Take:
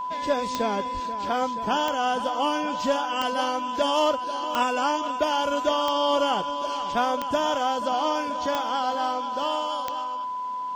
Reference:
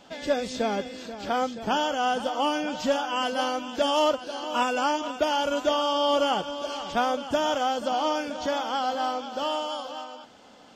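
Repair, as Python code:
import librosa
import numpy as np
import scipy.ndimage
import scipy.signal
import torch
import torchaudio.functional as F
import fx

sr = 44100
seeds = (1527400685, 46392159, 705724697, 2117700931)

y = fx.fix_declick_ar(x, sr, threshold=10.0)
y = fx.notch(y, sr, hz=1000.0, q=30.0)
y = fx.highpass(y, sr, hz=140.0, slope=24, at=(0.93, 1.05), fade=0.02)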